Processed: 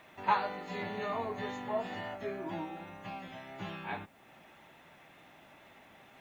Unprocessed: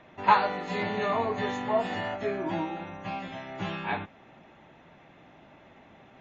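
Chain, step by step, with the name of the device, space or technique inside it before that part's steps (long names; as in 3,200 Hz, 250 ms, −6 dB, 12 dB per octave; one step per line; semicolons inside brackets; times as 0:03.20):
noise-reduction cassette on a plain deck (one half of a high-frequency compander encoder only; tape wow and flutter 25 cents; white noise bed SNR 36 dB)
level −8 dB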